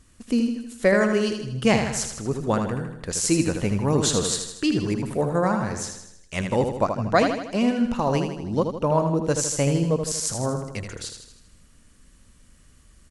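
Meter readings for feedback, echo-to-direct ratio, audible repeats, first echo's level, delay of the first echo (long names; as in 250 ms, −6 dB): 53%, −5.0 dB, 6, −6.5 dB, 79 ms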